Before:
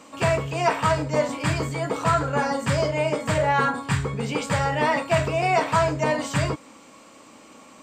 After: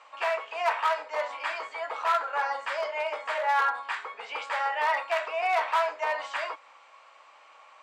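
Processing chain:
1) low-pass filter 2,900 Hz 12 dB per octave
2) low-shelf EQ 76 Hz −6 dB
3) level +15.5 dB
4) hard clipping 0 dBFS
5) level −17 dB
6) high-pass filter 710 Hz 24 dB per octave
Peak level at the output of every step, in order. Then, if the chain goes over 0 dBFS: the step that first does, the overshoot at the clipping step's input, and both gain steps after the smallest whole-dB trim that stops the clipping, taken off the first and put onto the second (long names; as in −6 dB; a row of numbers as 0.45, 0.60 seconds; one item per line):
−8.5, −8.5, +7.0, 0.0, −17.0, −14.0 dBFS
step 3, 7.0 dB
step 3 +8.5 dB, step 5 −10 dB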